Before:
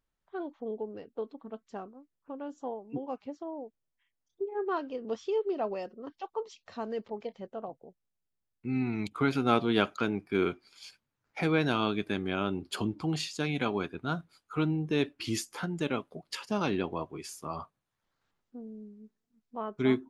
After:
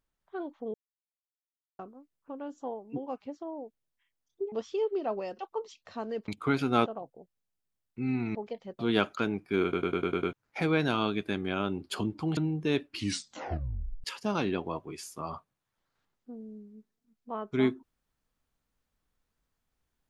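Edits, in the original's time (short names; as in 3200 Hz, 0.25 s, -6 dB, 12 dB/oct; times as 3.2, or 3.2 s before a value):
0.74–1.79 mute
4.52–5.06 cut
5.93–6.2 cut
7.09–7.53 swap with 9.02–9.6
10.44 stutter in place 0.10 s, 7 plays
13.18–14.63 cut
15.22 tape stop 1.08 s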